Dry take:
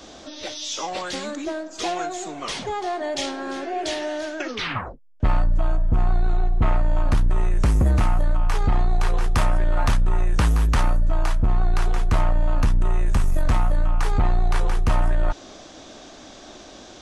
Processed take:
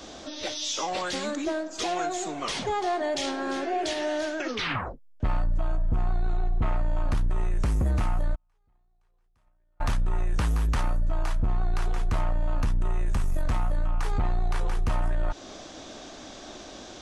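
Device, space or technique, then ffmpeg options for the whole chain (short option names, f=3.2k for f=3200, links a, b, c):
stacked limiters: -filter_complex "[0:a]asplit=3[a][b][c];[a]afade=t=out:st=8.34:d=0.02[d];[b]agate=range=-50dB:threshold=-11dB:ratio=16:detection=peak,afade=t=in:st=8.34:d=0.02,afade=t=out:st=9.8:d=0.02[e];[c]afade=t=in:st=9.8:d=0.02[f];[d][e][f]amix=inputs=3:normalize=0,alimiter=limit=-16dB:level=0:latency=1:release=235,alimiter=limit=-20dB:level=0:latency=1:release=68"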